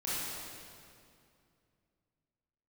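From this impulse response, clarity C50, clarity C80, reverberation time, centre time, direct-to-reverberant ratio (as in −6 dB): −5.0 dB, −2.0 dB, 2.5 s, 169 ms, −10.5 dB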